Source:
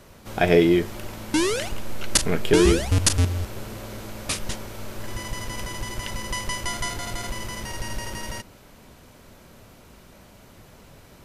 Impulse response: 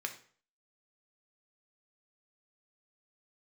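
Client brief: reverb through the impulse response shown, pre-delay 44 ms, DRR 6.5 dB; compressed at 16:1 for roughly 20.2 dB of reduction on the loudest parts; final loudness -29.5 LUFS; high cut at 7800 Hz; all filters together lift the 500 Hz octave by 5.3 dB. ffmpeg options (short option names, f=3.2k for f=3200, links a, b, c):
-filter_complex "[0:a]lowpass=7.8k,equalizer=f=500:t=o:g=7,acompressor=threshold=-28dB:ratio=16,asplit=2[a][b];[1:a]atrim=start_sample=2205,adelay=44[c];[b][c]afir=irnorm=-1:irlink=0,volume=-8dB[d];[a][d]amix=inputs=2:normalize=0,volume=4.5dB"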